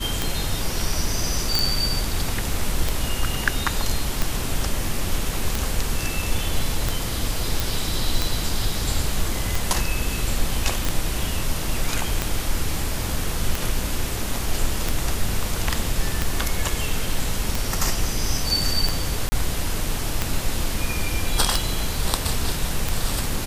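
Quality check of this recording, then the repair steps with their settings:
scratch tick 45 rpm
0:01.59: click
0:07.60: click
0:10.85: click
0:19.29–0:19.32: drop-out 30 ms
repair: click removal
repair the gap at 0:19.29, 30 ms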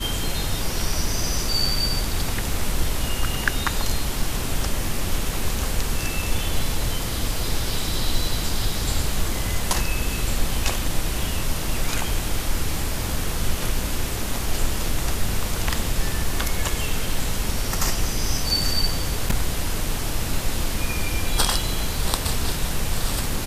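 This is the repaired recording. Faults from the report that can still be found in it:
none of them is left

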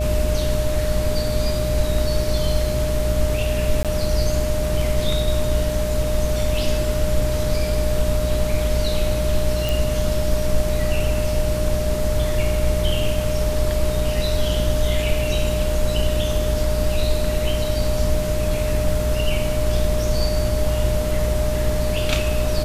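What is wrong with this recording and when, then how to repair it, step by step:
mains buzz 60 Hz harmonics 10 −24 dBFS
whistle 610 Hz −24 dBFS
0:03.83–0:03.85: drop-out 17 ms
0:09.69: click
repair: click removal
hum removal 60 Hz, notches 10
notch filter 610 Hz, Q 30
repair the gap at 0:03.83, 17 ms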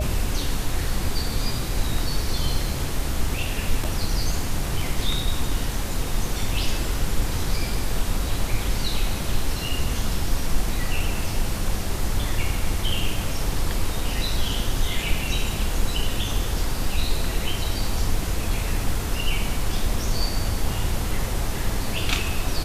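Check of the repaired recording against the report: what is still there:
none of them is left

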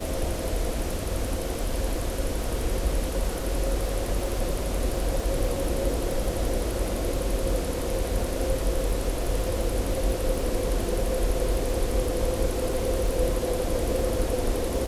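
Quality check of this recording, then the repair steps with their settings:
surface crackle 37 per second −32 dBFS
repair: click removal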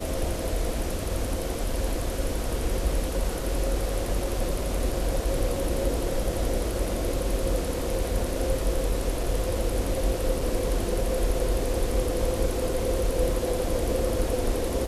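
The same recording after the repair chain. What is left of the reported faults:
none of them is left

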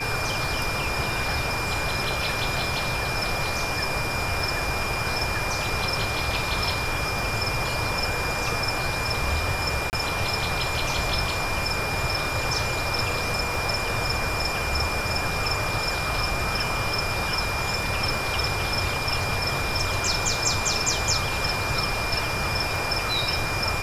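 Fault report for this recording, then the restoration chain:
surface crackle 25 per second −32 dBFS
whistle 2,400 Hz −30 dBFS
0:09.90–0:09.93: drop-out 29 ms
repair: click removal
notch filter 2,400 Hz, Q 30
repair the gap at 0:09.90, 29 ms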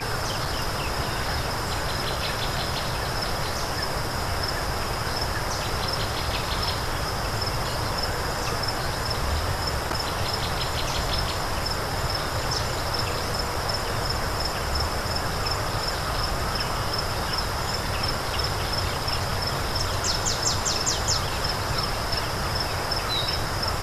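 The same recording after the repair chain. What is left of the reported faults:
none of them is left

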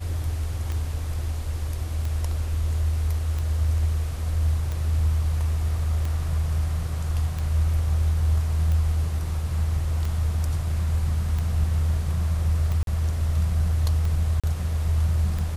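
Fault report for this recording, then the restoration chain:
scratch tick 45 rpm −18 dBFS
0:12.83–0:12.87: drop-out 42 ms
0:14.40–0:14.44: drop-out 36 ms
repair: click removal
repair the gap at 0:12.83, 42 ms
repair the gap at 0:14.40, 36 ms

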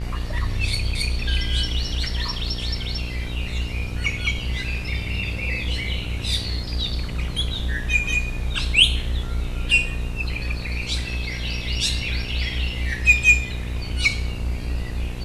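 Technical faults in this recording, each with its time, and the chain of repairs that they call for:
mains buzz 60 Hz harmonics 28 −29 dBFS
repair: hum removal 60 Hz, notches 28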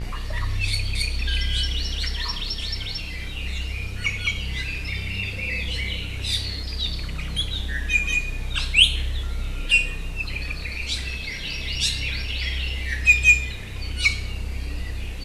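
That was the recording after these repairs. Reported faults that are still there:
none of them is left

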